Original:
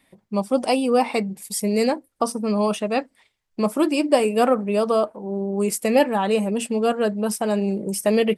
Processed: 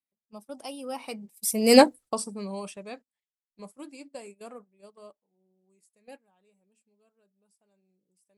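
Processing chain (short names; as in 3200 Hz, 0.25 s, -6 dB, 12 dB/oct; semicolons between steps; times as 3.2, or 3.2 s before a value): Doppler pass-by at 1.8, 19 m/s, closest 1 m; gate -53 dBFS, range -17 dB; high shelf 4300 Hz +10 dB; gain +7.5 dB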